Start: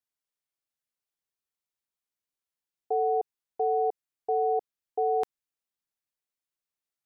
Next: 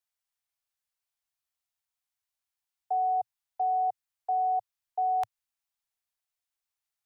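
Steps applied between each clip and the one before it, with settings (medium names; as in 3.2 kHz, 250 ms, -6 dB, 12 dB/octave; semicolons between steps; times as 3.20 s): Chebyshev band-stop 110–690 Hz, order 3; trim +2 dB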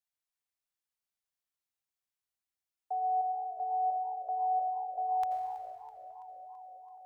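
feedback echo behind a band-pass 436 ms, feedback 73%, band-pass 440 Hz, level -17 dB; on a send at -5 dB: reverberation RT60 2.3 s, pre-delay 77 ms; on the sum: modulated delay 328 ms, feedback 60%, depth 160 cents, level -19 dB; trim -6 dB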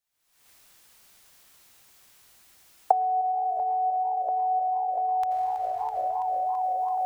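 recorder AGC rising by 61 dB/s; trim +4.5 dB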